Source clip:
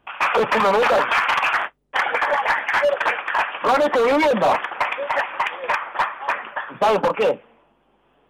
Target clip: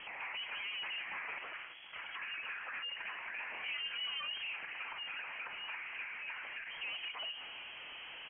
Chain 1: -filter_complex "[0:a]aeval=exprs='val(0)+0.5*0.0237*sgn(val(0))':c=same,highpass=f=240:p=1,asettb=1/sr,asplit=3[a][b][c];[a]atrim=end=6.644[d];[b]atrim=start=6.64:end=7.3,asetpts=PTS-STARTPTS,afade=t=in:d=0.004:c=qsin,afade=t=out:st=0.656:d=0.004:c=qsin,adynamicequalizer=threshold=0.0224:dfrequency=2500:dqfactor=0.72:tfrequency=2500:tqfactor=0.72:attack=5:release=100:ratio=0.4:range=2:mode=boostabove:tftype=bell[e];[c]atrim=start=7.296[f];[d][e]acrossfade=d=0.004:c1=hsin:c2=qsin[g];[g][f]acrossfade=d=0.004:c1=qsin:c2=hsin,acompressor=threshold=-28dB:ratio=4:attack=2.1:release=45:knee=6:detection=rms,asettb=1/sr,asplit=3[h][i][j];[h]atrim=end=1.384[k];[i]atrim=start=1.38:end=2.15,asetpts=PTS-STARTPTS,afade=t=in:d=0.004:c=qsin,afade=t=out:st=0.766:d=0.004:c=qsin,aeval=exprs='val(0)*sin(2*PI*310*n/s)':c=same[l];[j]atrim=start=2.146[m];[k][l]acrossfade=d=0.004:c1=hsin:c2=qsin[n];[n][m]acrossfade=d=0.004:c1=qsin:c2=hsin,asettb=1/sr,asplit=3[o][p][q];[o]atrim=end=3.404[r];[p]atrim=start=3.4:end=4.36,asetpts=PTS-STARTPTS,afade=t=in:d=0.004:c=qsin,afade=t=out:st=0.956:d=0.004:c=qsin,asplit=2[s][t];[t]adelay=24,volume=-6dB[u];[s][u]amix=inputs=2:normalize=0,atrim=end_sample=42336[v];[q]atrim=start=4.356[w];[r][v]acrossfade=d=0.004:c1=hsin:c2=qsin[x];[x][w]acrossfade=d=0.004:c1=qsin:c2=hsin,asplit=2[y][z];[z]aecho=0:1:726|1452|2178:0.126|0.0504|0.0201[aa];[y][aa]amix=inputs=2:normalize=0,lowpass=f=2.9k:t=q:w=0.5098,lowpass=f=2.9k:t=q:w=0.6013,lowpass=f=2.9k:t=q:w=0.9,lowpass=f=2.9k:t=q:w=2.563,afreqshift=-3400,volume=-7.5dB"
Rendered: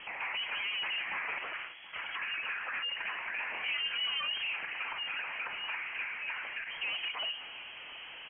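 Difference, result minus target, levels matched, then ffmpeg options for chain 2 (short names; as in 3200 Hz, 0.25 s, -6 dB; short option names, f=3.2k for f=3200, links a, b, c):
compressor: peak gain reduction -6 dB
-filter_complex "[0:a]aeval=exprs='val(0)+0.5*0.0237*sgn(val(0))':c=same,highpass=f=240:p=1,asettb=1/sr,asplit=3[a][b][c];[a]atrim=end=6.644[d];[b]atrim=start=6.64:end=7.3,asetpts=PTS-STARTPTS,afade=t=in:d=0.004:c=qsin,afade=t=out:st=0.656:d=0.004:c=qsin,adynamicequalizer=threshold=0.0224:dfrequency=2500:dqfactor=0.72:tfrequency=2500:tqfactor=0.72:attack=5:release=100:ratio=0.4:range=2:mode=boostabove:tftype=bell[e];[c]atrim=start=7.296[f];[d][e]acrossfade=d=0.004:c1=hsin:c2=qsin[g];[g][f]acrossfade=d=0.004:c1=qsin:c2=hsin,acompressor=threshold=-36dB:ratio=4:attack=2.1:release=45:knee=6:detection=rms,asettb=1/sr,asplit=3[h][i][j];[h]atrim=end=1.384[k];[i]atrim=start=1.38:end=2.15,asetpts=PTS-STARTPTS,afade=t=in:d=0.004:c=qsin,afade=t=out:st=0.766:d=0.004:c=qsin,aeval=exprs='val(0)*sin(2*PI*310*n/s)':c=same[l];[j]atrim=start=2.146[m];[k][l]acrossfade=d=0.004:c1=hsin:c2=qsin[n];[n][m]acrossfade=d=0.004:c1=qsin:c2=hsin,asettb=1/sr,asplit=3[o][p][q];[o]atrim=end=3.404[r];[p]atrim=start=3.4:end=4.36,asetpts=PTS-STARTPTS,afade=t=in:d=0.004:c=qsin,afade=t=out:st=0.956:d=0.004:c=qsin,asplit=2[s][t];[t]adelay=24,volume=-6dB[u];[s][u]amix=inputs=2:normalize=0,atrim=end_sample=42336[v];[q]atrim=start=4.356[w];[r][v]acrossfade=d=0.004:c1=hsin:c2=qsin[x];[x][w]acrossfade=d=0.004:c1=qsin:c2=hsin,asplit=2[y][z];[z]aecho=0:1:726|1452|2178:0.126|0.0504|0.0201[aa];[y][aa]amix=inputs=2:normalize=0,lowpass=f=2.9k:t=q:w=0.5098,lowpass=f=2.9k:t=q:w=0.6013,lowpass=f=2.9k:t=q:w=0.9,lowpass=f=2.9k:t=q:w=2.563,afreqshift=-3400,volume=-7.5dB"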